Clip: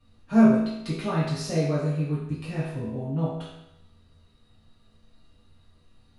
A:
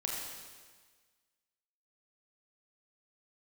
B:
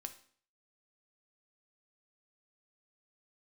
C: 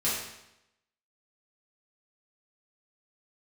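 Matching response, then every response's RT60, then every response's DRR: C; 1.5, 0.50, 0.85 seconds; −3.0, 7.5, −10.0 decibels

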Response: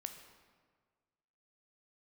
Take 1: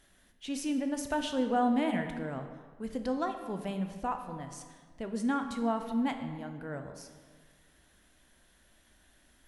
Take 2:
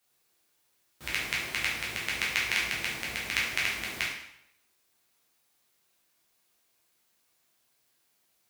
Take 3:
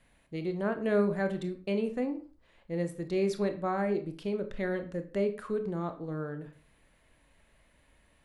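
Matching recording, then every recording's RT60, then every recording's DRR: 1; 1.6, 0.80, 0.40 seconds; 6.0, −6.0, 7.5 decibels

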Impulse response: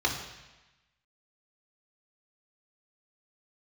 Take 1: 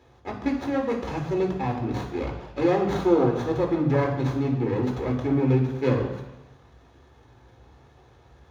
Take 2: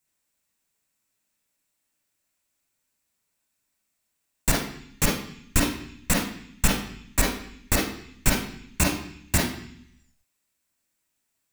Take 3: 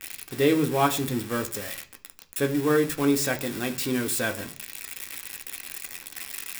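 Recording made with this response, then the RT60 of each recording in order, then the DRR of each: 1; 1.1 s, 0.65 s, non-exponential decay; −3.0, −2.0, 4.5 decibels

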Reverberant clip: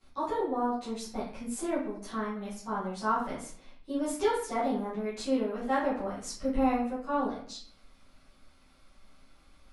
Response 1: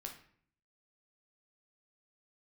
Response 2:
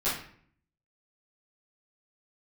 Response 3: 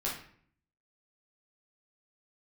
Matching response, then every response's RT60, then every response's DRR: 2; 0.55, 0.55, 0.55 seconds; 1.5, −14.5, −6.0 decibels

